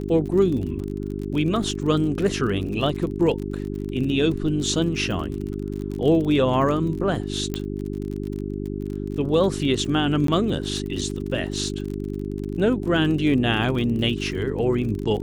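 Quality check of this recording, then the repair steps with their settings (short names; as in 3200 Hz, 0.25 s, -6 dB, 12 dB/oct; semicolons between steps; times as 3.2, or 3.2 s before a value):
crackle 39/s -30 dBFS
hum 50 Hz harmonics 8 -29 dBFS
7.54 pop -13 dBFS
10.27–10.28 gap 13 ms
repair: de-click; de-hum 50 Hz, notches 8; interpolate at 10.27, 13 ms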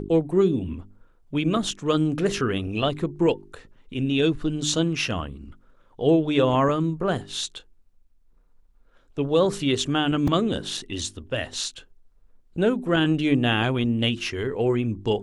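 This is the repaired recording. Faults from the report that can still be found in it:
none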